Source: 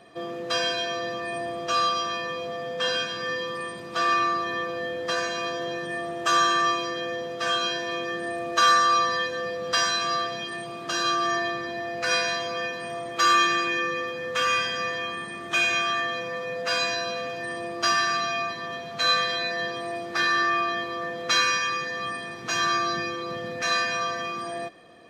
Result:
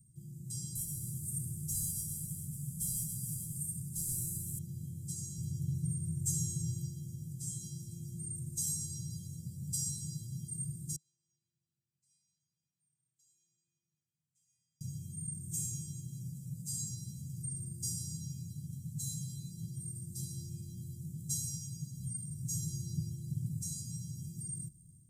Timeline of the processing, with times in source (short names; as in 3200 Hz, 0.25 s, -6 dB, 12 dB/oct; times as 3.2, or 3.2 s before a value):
0.75–4.59 CVSD 64 kbps
5.37–6.88 bell 84 Hz +8.5 dB 1.8 oct
10.96–14.81 band-pass 2000 Hz, Q 18
whole clip: Chebyshev band-stop 150–7900 Hz, order 4; bell 330 Hz +6 dB 0.54 oct; AGC gain up to 5.5 dB; gain +4.5 dB